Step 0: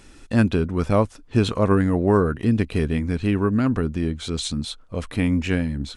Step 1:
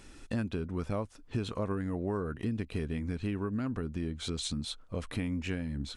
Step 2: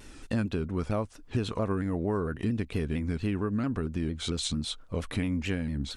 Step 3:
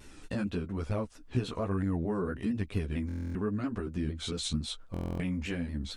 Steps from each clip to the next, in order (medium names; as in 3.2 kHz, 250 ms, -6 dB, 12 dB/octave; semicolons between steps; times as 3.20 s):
compression 4:1, threshold -27 dBFS, peak gain reduction 12.5 dB; trim -4.5 dB
vibrato with a chosen wave saw down 4.4 Hz, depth 100 cents; trim +4 dB
chorus voices 2, 1.1 Hz, delay 13 ms, depth 3.4 ms; buffer glitch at 3.07/4.92 s, samples 1024, times 11